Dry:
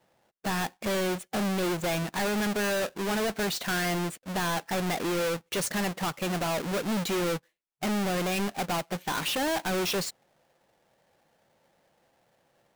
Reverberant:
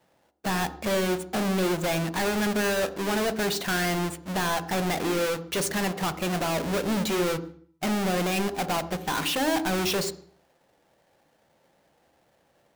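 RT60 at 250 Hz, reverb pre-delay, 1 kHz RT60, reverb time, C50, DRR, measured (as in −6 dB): 0.55 s, 16 ms, 0.50 s, 0.50 s, 13.5 dB, 11.5 dB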